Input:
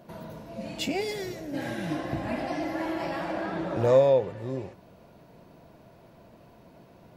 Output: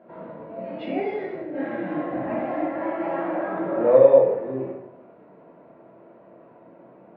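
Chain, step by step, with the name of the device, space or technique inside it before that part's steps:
supermarket ceiling speaker (band-pass filter 250–5,400 Hz; convolution reverb RT60 0.85 s, pre-delay 3 ms, DRR −5.5 dB)
Bessel low-pass filter 1,500 Hz, order 4
level −1 dB

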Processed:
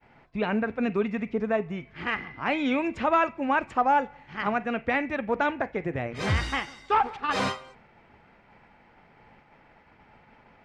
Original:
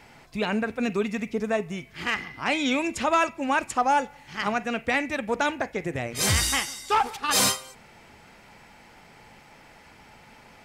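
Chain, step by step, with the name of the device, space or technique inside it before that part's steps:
hearing-loss simulation (low-pass filter 2,200 Hz 12 dB per octave; downward expander −47 dBFS)

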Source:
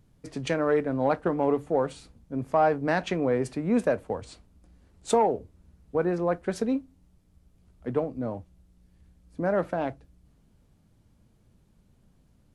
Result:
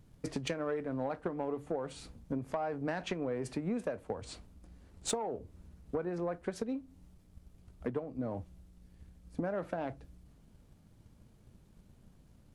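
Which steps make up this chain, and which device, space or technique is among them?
drum-bus smash (transient designer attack +7 dB, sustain +3 dB; downward compressor 6 to 1, threshold −32 dBFS, peak gain reduction 19 dB; soft clipping −23 dBFS, distortion −20 dB)

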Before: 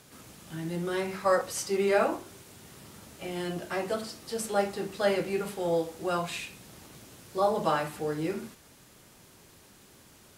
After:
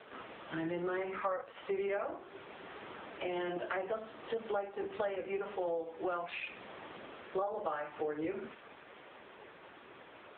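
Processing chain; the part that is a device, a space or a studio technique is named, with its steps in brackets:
dynamic equaliser 970 Hz, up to −4 dB, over −44 dBFS, Q 5.6
voicemail (band-pass filter 420–2,600 Hz; downward compressor 8 to 1, threshold −44 dBFS, peak gain reduction 22.5 dB; level +11 dB; AMR narrowband 6.7 kbit/s 8,000 Hz)

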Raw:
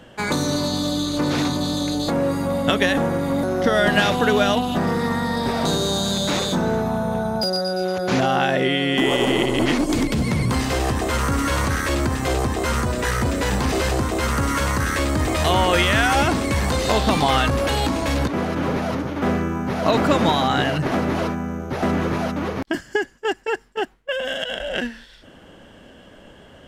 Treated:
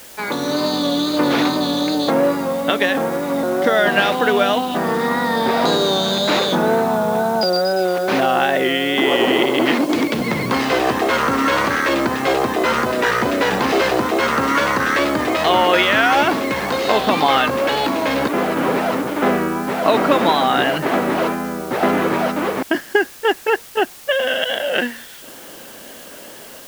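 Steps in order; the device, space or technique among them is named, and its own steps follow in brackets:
dictaphone (band-pass filter 280–3,900 Hz; automatic gain control gain up to 7.5 dB; tape wow and flutter; white noise bed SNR 22 dB)

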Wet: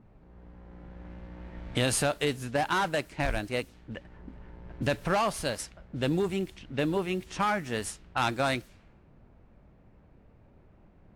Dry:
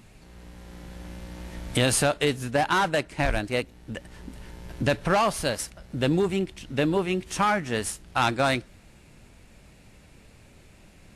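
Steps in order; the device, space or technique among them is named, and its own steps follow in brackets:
cassette deck with a dynamic noise filter (white noise bed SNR 28 dB; low-pass that shuts in the quiet parts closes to 820 Hz, open at −24 dBFS)
level −4.5 dB

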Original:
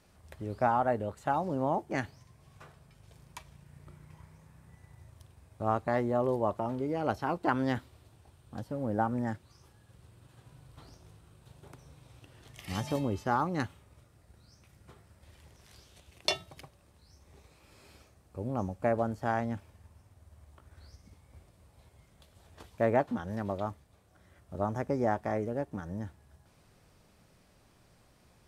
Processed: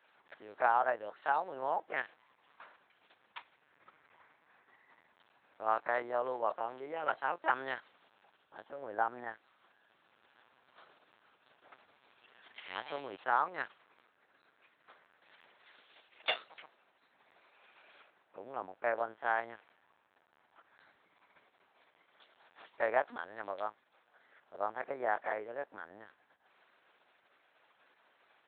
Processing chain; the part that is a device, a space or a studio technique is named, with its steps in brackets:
talking toy (linear-prediction vocoder at 8 kHz pitch kept; high-pass filter 680 Hz 12 dB per octave; parametric band 1,600 Hz +5 dB 0.58 octaves)

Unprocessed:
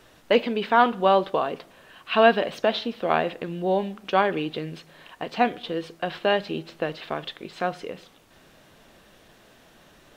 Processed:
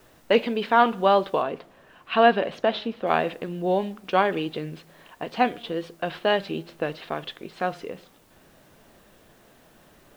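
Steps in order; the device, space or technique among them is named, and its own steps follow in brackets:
plain cassette with noise reduction switched in (one half of a high-frequency compander decoder only; tape wow and flutter; white noise bed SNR 38 dB)
0:01.42–0:03.07: high-shelf EQ 5,000 Hz −10.5 dB

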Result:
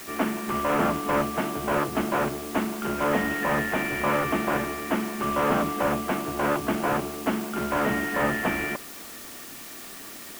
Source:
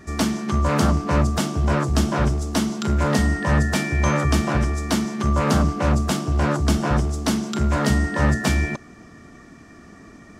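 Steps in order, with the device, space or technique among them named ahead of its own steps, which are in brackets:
army field radio (band-pass filter 310–2,900 Hz; variable-slope delta modulation 16 kbit/s; white noise bed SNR 15 dB)
level +1 dB

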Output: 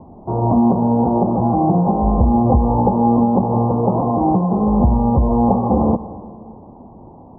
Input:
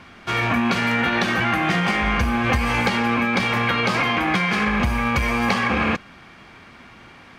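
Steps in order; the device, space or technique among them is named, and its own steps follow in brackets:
saturated reverb return (on a send at −11 dB: convolution reverb RT60 1.8 s, pre-delay 68 ms + soft clipping −19.5 dBFS, distortion −12 dB)
on the sum: Butterworth low-pass 950 Hz 72 dB per octave
level +8 dB

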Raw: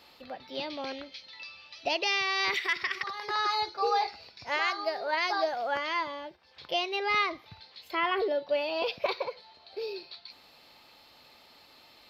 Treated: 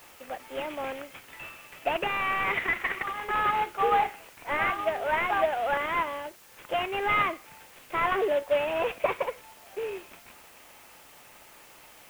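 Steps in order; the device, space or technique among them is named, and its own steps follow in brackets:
army field radio (band-pass filter 340–3,100 Hz; variable-slope delta modulation 16 kbit/s; white noise bed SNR 25 dB)
level +4.5 dB

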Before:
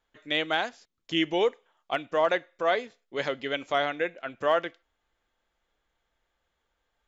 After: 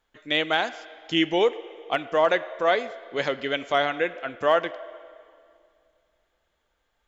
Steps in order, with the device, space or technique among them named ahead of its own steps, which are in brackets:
filtered reverb send (on a send: high-pass filter 340 Hz 24 dB per octave + low-pass filter 4,400 Hz 12 dB per octave + convolution reverb RT60 2.3 s, pre-delay 22 ms, DRR 14.5 dB)
on the sum: level +3.5 dB

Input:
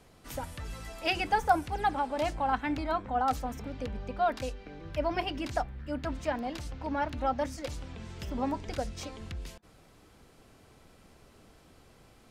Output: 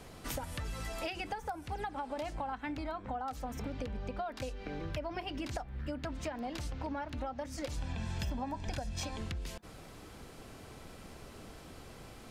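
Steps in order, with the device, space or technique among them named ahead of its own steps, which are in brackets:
serial compression, leveller first (downward compressor 2.5 to 1, threshold −32 dBFS, peak gain reduction 9.5 dB; downward compressor 10 to 1, threshold −43 dBFS, peak gain reduction 17 dB)
0:07.77–0:09.18: comb filter 1.2 ms, depth 53%
level +7.5 dB

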